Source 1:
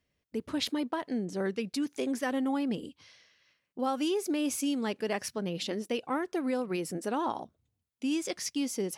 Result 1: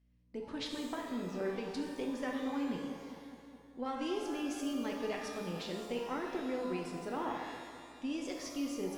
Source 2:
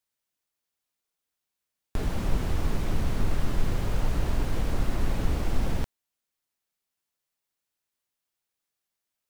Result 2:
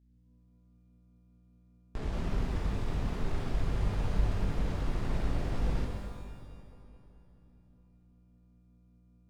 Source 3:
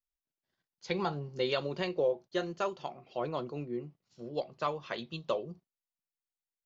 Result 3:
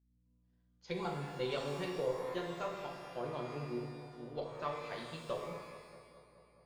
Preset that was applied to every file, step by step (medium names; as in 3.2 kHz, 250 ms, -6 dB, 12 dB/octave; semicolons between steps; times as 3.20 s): hum 60 Hz, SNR 32 dB; Chebyshev shaper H 8 -29 dB, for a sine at -12 dBFS; distance through air 68 m; on a send: bucket-brigade echo 211 ms, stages 2048, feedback 68%, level -13 dB; on the sum: pitch-shifted reverb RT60 1.2 s, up +12 st, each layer -8 dB, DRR 1.5 dB; trim -8 dB